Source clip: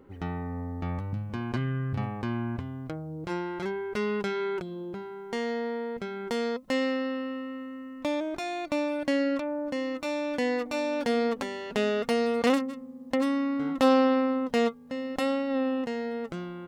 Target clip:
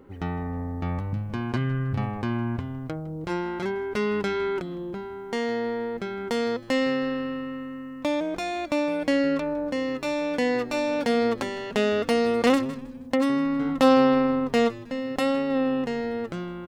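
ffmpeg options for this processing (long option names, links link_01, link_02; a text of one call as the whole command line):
ffmpeg -i in.wav -filter_complex "[0:a]asplit=4[link_01][link_02][link_03][link_04];[link_02]adelay=158,afreqshift=-120,volume=-20dB[link_05];[link_03]adelay=316,afreqshift=-240,volume=-27.1dB[link_06];[link_04]adelay=474,afreqshift=-360,volume=-34.3dB[link_07];[link_01][link_05][link_06][link_07]amix=inputs=4:normalize=0,volume=3.5dB" out.wav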